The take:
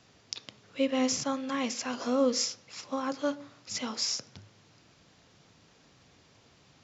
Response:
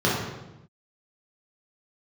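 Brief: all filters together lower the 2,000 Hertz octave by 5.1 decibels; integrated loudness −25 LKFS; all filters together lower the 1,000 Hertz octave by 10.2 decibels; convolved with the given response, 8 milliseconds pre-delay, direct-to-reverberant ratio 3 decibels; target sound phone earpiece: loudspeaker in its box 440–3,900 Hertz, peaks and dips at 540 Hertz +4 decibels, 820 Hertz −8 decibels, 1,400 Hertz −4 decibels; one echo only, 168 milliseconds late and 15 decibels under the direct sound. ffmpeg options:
-filter_complex "[0:a]equalizer=frequency=1000:width_type=o:gain=-7,equalizer=frequency=2000:width_type=o:gain=-3,aecho=1:1:168:0.178,asplit=2[link_01][link_02];[1:a]atrim=start_sample=2205,adelay=8[link_03];[link_02][link_03]afir=irnorm=-1:irlink=0,volume=-20.5dB[link_04];[link_01][link_04]amix=inputs=2:normalize=0,highpass=440,equalizer=frequency=540:width_type=q:width=4:gain=4,equalizer=frequency=820:width_type=q:width=4:gain=-8,equalizer=frequency=1400:width_type=q:width=4:gain=-4,lowpass=frequency=3900:width=0.5412,lowpass=frequency=3900:width=1.3066,volume=8.5dB"

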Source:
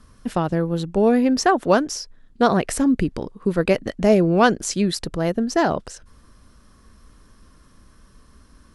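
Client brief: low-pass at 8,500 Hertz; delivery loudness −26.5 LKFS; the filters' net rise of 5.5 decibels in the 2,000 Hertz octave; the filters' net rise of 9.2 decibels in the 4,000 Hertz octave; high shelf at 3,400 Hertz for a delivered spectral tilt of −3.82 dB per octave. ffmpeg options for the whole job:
ffmpeg -i in.wav -af "lowpass=8500,equalizer=frequency=2000:width_type=o:gain=4.5,highshelf=frequency=3400:gain=8,equalizer=frequency=4000:width_type=o:gain=5,volume=-7.5dB" out.wav

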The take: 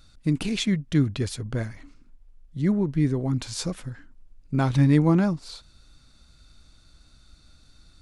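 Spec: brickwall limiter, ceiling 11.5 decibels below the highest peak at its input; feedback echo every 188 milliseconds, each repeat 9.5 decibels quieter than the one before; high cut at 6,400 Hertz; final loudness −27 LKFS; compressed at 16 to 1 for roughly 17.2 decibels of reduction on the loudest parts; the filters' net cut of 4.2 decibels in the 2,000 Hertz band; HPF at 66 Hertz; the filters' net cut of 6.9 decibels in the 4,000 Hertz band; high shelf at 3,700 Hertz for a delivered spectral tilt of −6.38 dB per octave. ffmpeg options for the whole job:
ffmpeg -i in.wav -af "highpass=66,lowpass=6400,equalizer=frequency=2000:width_type=o:gain=-3.5,highshelf=frequency=3700:gain=-3,equalizer=frequency=4000:width_type=o:gain=-5,acompressor=threshold=-32dB:ratio=16,alimiter=level_in=11dB:limit=-24dB:level=0:latency=1,volume=-11dB,aecho=1:1:188|376|564|752:0.335|0.111|0.0365|0.012,volume=16.5dB" out.wav

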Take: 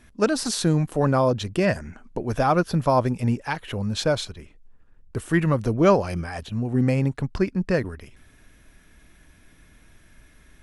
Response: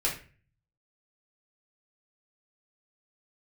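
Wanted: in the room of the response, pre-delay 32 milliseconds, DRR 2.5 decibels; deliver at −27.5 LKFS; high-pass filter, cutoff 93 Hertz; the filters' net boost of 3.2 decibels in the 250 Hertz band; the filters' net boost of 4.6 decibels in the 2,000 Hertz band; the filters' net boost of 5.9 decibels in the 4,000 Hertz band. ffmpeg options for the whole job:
-filter_complex "[0:a]highpass=93,equalizer=frequency=250:width_type=o:gain=4.5,equalizer=frequency=2000:width_type=o:gain=4.5,equalizer=frequency=4000:width_type=o:gain=6,asplit=2[link_01][link_02];[1:a]atrim=start_sample=2205,adelay=32[link_03];[link_02][link_03]afir=irnorm=-1:irlink=0,volume=-10.5dB[link_04];[link_01][link_04]amix=inputs=2:normalize=0,volume=-8dB"

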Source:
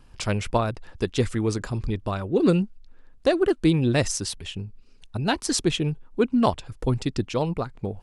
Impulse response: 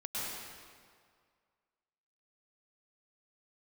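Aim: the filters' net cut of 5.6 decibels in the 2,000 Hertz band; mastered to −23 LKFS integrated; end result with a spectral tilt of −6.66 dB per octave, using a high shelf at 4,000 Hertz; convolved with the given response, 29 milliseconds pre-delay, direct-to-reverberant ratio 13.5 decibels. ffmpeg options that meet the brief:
-filter_complex "[0:a]equalizer=frequency=2000:width_type=o:gain=-7,highshelf=frequency=4000:gain=-3,asplit=2[link_01][link_02];[1:a]atrim=start_sample=2205,adelay=29[link_03];[link_02][link_03]afir=irnorm=-1:irlink=0,volume=-17.5dB[link_04];[link_01][link_04]amix=inputs=2:normalize=0,volume=2.5dB"

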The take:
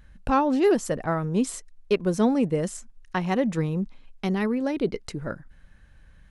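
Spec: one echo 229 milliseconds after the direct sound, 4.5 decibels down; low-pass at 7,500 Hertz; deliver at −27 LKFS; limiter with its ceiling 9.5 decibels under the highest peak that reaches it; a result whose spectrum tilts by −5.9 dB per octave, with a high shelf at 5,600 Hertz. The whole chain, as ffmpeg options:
ffmpeg -i in.wav -af "lowpass=7500,highshelf=frequency=5600:gain=5,alimiter=limit=-20.5dB:level=0:latency=1,aecho=1:1:229:0.596,volume=2dB" out.wav

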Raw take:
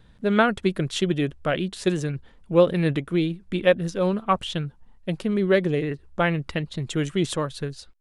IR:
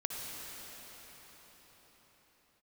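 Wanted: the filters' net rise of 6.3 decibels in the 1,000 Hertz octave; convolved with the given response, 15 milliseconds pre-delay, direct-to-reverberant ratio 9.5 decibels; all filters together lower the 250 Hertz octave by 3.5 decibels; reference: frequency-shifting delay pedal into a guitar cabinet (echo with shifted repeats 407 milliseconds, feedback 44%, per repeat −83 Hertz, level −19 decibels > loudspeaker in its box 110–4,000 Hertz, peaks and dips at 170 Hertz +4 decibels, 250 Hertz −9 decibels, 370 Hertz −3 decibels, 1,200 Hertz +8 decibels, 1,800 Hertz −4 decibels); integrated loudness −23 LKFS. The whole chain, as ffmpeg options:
-filter_complex "[0:a]equalizer=frequency=250:width_type=o:gain=-4.5,equalizer=frequency=1000:width_type=o:gain=3,asplit=2[link_01][link_02];[1:a]atrim=start_sample=2205,adelay=15[link_03];[link_02][link_03]afir=irnorm=-1:irlink=0,volume=-12.5dB[link_04];[link_01][link_04]amix=inputs=2:normalize=0,asplit=4[link_05][link_06][link_07][link_08];[link_06]adelay=407,afreqshift=-83,volume=-19dB[link_09];[link_07]adelay=814,afreqshift=-166,volume=-26.1dB[link_10];[link_08]adelay=1221,afreqshift=-249,volume=-33.3dB[link_11];[link_05][link_09][link_10][link_11]amix=inputs=4:normalize=0,highpass=110,equalizer=frequency=170:width_type=q:width=4:gain=4,equalizer=frequency=250:width_type=q:width=4:gain=-9,equalizer=frequency=370:width_type=q:width=4:gain=-3,equalizer=frequency=1200:width_type=q:width=4:gain=8,equalizer=frequency=1800:width_type=q:width=4:gain=-4,lowpass=frequency=4000:width=0.5412,lowpass=frequency=4000:width=1.3066,volume=1dB"

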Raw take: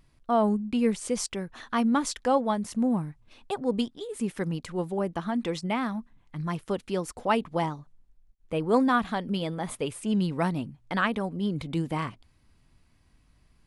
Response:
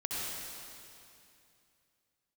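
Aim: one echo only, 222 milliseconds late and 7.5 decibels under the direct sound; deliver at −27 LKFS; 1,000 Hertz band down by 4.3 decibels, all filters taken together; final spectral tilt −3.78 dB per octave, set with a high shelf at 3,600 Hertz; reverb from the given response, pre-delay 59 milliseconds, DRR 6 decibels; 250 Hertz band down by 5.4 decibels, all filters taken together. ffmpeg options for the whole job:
-filter_complex "[0:a]equalizer=frequency=250:width_type=o:gain=-6.5,equalizer=frequency=1000:width_type=o:gain=-6,highshelf=frequency=3600:gain=8.5,aecho=1:1:222:0.422,asplit=2[link_01][link_02];[1:a]atrim=start_sample=2205,adelay=59[link_03];[link_02][link_03]afir=irnorm=-1:irlink=0,volume=-11dB[link_04];[link_01][link_04]amix=inputs=2:normalize=0,volume=3dB"

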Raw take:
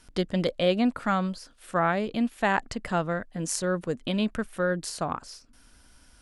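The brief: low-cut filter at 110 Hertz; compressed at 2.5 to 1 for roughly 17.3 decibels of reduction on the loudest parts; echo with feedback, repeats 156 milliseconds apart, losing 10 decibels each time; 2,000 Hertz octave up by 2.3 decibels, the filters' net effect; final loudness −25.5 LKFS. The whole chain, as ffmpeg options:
ffmpeg -i in.wav -af "highpass=110,equalizer=frequency=2000:width_type=o:gain=3,acompressor=threshold=-47dB:ratio=2.5,aecho=1:1:156|312|468|624:0.316|0.101|0.0324|0.0104,volume=17.5dB" out.wav

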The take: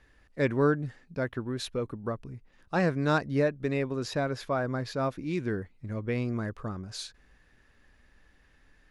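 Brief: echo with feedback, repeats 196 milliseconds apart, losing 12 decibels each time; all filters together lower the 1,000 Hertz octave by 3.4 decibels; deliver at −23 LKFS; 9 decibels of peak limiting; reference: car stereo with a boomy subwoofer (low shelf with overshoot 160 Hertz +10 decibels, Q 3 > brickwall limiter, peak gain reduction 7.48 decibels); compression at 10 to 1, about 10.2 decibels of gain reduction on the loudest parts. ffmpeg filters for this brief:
ffmpeg -i in.wav -af "equalizer=frequency=1000:width_type=o:gain=-4.5,acompressor=threshold=-31dB:ratio=10,alimiter=level_in=7.5dB:limit=-24dB:level=0:latency=1,volume=-7.5dB,lowshelf=frequency=160:width_type=q:width=3:gain=10,aecho=1:1:196|392|588:0.251|0.0628|0.0157,volume=11.5dB,alimiter=limit=-14.5dB:level=0:latency=1" out.wav

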